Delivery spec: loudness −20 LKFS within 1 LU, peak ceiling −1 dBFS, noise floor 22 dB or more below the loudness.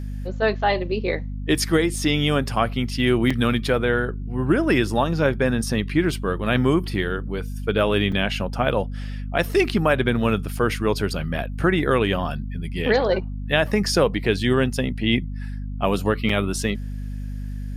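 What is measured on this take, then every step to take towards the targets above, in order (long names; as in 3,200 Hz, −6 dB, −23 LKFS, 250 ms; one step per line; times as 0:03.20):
number of dropouts 4; longest dropout 4.7 ms; mains hum 50 Hz; hum harmonics up to 250 Hz; level of the hum −27 dBFS; integrated loudness −22.0 LKFS; sample peak −6.5 dBFS; target loudness −20.0 LKFS
→ repair the gap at 0:02.56/0:03.30/0:08.12/0:16.29, 4.7 ms
hum removal 50 Hz, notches 5
level +2 dB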